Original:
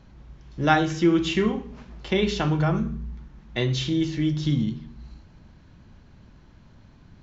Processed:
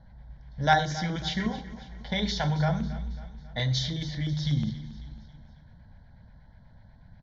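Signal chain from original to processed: fixed phaser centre 1800 Hz, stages 8; low-pass opened by the level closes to 2200 Hz, open at -21.5 dBFS; high shelf 5100 Hz +9.5 dB; LFO notch square 8.2 Hz 310–2500 Hz; on a send: feedback echo 0.273 s, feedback 50%, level -16.5 dB

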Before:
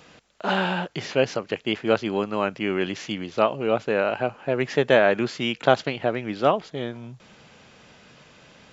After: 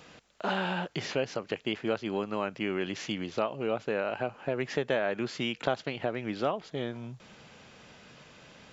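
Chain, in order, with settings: compressor 2.5:1, threshold -27 dBFS, peak gain reduction 10.5 dB; gain -2 dB

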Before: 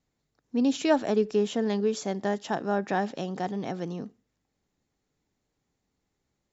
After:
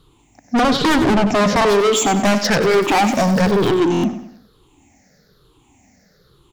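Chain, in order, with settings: moving spectral ripple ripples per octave 0.63, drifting -1.1 Hz, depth 20 dB; 0.59–1.65 tilt -4 dB/oct; sine folder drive 12 dB, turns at -6.5 dBFS; 2.61–3.69 crackle 450/s -26 dBFS; soft clip -17.5 dBFS, distortion -9 dB; feedback echo 96 ms, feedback 40%, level -10.5 dB; stuck buffer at 3.92, samples 1024, times 4; gain +4.5 dB

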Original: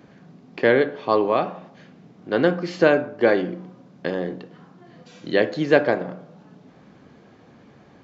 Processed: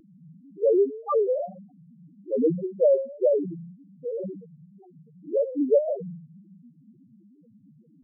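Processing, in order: loudest bins only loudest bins 1; wow and flutter 140 cents; gain +5.5 dB

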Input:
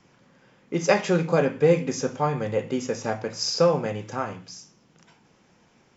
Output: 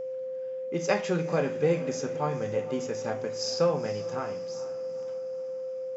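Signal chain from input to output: diffused feedback echo 0.466 s, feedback 51%, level -15.5 dB; whine 520 Hz -26 dBFS; gain -6 dB

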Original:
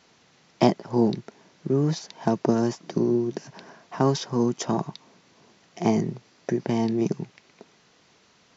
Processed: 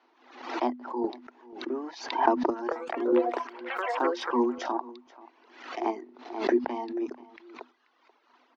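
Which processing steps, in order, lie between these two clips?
reverb removal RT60 1.5 s; dynamic EQ 310 Hz, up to -6 dB, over -34 dBFS, Q 0.79; AGC gain up to 11 dB; rippled Chebyshev high-pass 240 Hz, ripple 9 dB; chopper 0.96 Hz, depth 60%, duty 40%; 2.45–4.74 echoes that change speed 0.237 s, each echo +6 st, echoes 3; air absorption 250 m; echo 0.484 s -20.5 dB; backwards sustainer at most 85 dB/s; gain +1.5 dB

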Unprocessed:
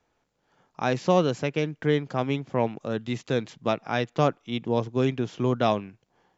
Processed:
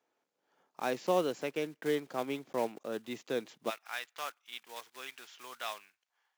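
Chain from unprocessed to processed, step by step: block floating point 5-bit; Chebyshev high-pass 330 Hz, order 2, from 3.69 s 1500 Hz; gain -7 dB

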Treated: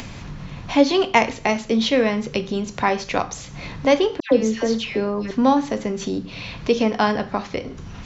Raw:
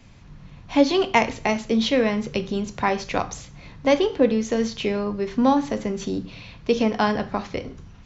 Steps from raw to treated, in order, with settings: low shelf 130 Hz -5.5 dB; upward compressor, threshold -25 dBFS; 4.2–5.31 dispersion lows, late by 0.116 s, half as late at 1600 Hz; gain +2.5 dB

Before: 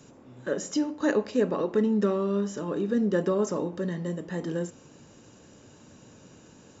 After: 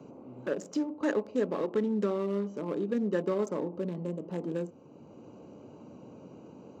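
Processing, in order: Wiener smoothing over 25 samples; HPF 220 Hz 6 dB/oct; three-band squash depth 40%; gain -2 dB

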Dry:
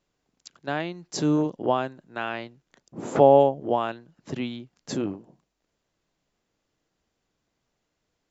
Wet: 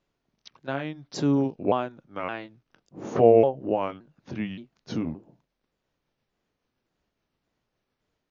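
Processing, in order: repeated pitch sweeps -4 st, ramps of 0.572 s; Bessel low-pass 4400 Hz, order 2

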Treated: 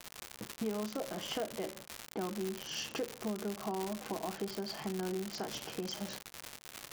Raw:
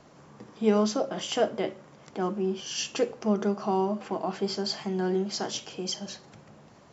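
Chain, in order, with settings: LPF 2500 Hz 6 dB/oct; gate -45 dBFS, range -34 dB; compressor 4:1, threshold -39 dBFS, peak gain reduction 18 dB; crackle 190/s -31 dBFS; gain +2 dB

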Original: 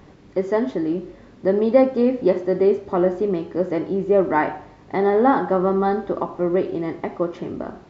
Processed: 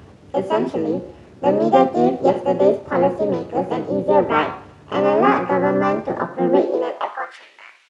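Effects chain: harmoniser -7 st -12 dB, +5 st -7 dB, +7 st 0 dB; high-pass sweep 85 Hz -> 2500 Hz, 6.1–7.51; gain -2.5 dB

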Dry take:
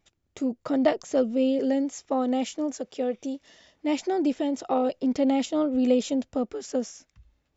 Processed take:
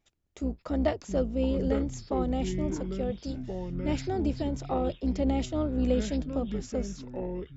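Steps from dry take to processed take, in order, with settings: octaver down 2 oct, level -1 dB; echoes that change speed 0.5 s, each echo -6 st, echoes 2, each echo -6 dB; gain -5.5 dB

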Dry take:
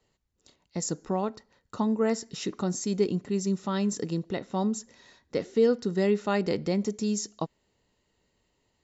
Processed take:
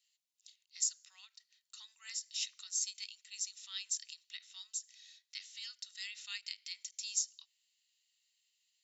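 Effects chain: inverse Chebyshev high-pass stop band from 460 Hz, stop band 80 dB; ending taper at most 400 dB/s; gain +1.5 dB

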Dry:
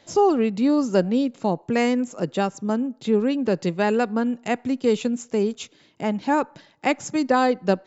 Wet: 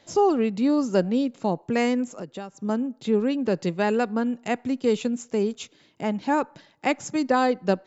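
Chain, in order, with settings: 2.06–2.62 compressor 4:1, threshold -32 dBFS, peak gain reduction 12.5 dB; gain -2 dB

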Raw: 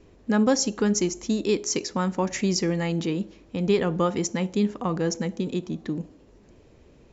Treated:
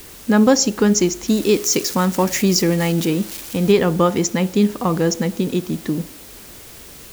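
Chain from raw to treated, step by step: 1.28–3.72 switching spikes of -27 dBFS; requantised 8-bit, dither triangular; gain +7.5 dB

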